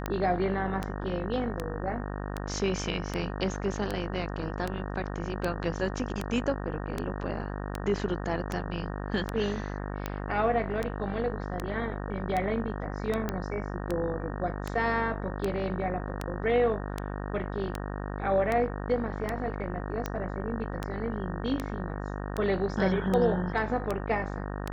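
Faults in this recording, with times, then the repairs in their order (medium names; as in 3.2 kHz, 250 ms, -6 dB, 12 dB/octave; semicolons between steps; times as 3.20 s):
buzz 50 Hz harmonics 37 -35 dBFS
tick 78 rpm -16 dBFS
13.29 s: pop -16 dBFS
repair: de-click; de-hum 50 Hz, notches 37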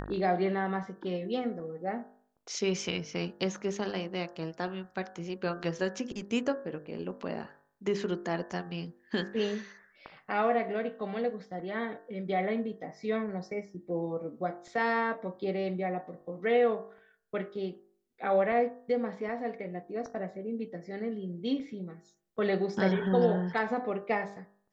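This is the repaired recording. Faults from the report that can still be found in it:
nothing left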